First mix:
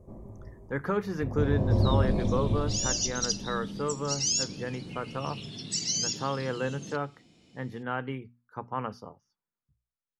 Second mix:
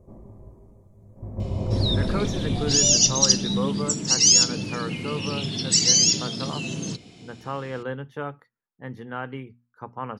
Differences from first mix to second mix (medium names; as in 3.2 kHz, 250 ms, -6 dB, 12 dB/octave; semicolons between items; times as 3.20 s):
speech: entry +1.25 s; second sound +12.0 dB